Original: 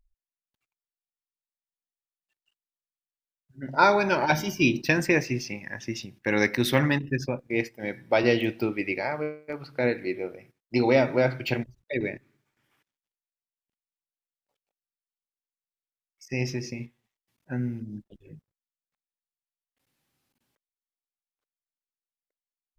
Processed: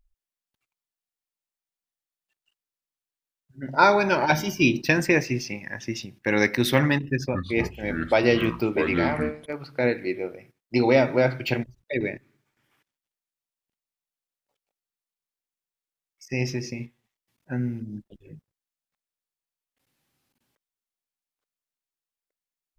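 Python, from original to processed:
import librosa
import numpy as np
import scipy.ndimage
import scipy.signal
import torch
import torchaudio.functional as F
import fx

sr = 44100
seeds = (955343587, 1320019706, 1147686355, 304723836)

y = fx.echo_pitch(x, sr, ms=205, semitones=-6, count=3, db_per_echo=-6.0, at=(7.07, 9.46))
y = y * 10.0 ** (2.0 / 20.0)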